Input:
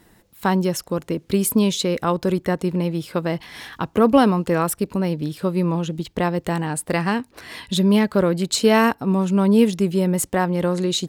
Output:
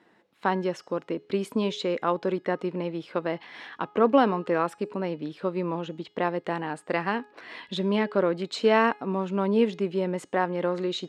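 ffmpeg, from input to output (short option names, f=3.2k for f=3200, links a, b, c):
-af "highpass=290,lowpass=3k,bandreject=f=418.3:t=h:w=4,bandreject=f=836.6:t=h:w=4,bandreject=f=1.2549k:t=h:w=4,bandreject=f=1.6732k:t=h:w=4,bandreject=f=2.0915k:t=h:w=4,bandreject=f=2.5098k:t=h:w=4,bandreject=f=2.9281k:t=h:w=4,bandreject=f=3.3464k:t=h:w=4,bandreject=f=3.7647k:t=h:w=4,bandreject=f=4.183k:t=h:w=4,bandreject=f=4.6013k:t=h:w=4,bandreject=f=5.0196k:t=h:w=4,bandreject=f=5.4379k:t=h:w=4,bandreject=f=5.8562k:t=h:w=4,bandreject=f=6.2745k:t=h:w=4,bandreject=f=6.6928k:t=h:w=4,bandreject=f=7.1111k:t=h:w=4,bandreject=f=7.5294k:t=h:w=4,bandreject=f=7.9477k:t=h:w=4,bandreject=f=8.366k:t=h:w=4,bandreject=f=8.7843k:t=h:w=4,volume=-3.5dB"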